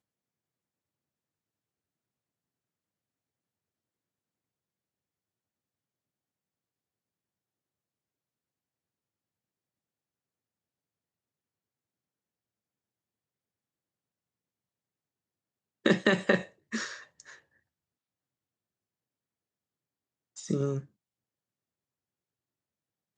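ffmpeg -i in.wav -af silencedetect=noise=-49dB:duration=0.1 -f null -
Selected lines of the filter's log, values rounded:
silence_start: 0.00
silence_end: 15.85 | silence_duration: 15.85
silence_start: 16.48
silence_end: 16.72 | silence_duration: 0.23
silence_start: 17.04
silence_end: 17.20 | silence_duration: 0.16
silence_start: 17.38
silence_end: 20.36 | silence_duration: 2.98
silence_start: 20.86
silence_end: 23.18 | silence_duration: 2.32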